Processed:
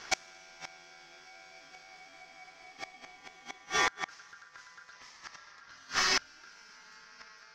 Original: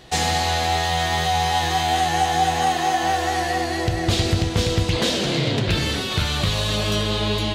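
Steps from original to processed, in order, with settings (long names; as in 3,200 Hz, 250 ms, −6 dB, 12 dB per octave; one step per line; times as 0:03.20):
ring modulation 1,500 Hz
gate with flip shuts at −14 dBFS, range −31 dB
high shelf with overshoot 7,600 Hz −7.5 dB, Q 3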